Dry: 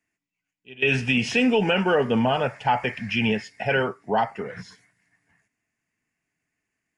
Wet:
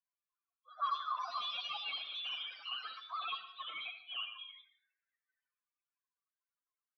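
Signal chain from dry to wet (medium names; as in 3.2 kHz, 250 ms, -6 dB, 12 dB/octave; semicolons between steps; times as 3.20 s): coarse spectral quantiser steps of 30 dB; high-pass 81 Hz 6 dB/octave; bass shelf 150 Hz -2.5 dB; in parallel at -8.5 dB: bit crusher 5-bit; on the sum: loudest bins only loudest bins 2; overdrive pedal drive 20 dB, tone 2.8 kHz, clips at -20 dBFS; flange 0.32 Hz, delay 1 ms, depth 6.9 ms, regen -44%; frequency inversion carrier 3.7 kHz; ever faster or slower copies 120 ms, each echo +3 st, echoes 3, each echo -6 dB; vowel filter a; on a send at -9.5 dB: reverberation, pre-delay 63 ms; on the sum: trim +3.5 dB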